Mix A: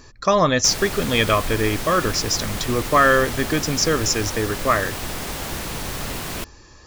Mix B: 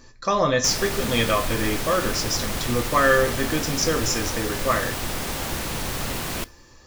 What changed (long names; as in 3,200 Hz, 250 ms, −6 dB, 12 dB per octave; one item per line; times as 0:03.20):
speech −8.0 dB
reverb: on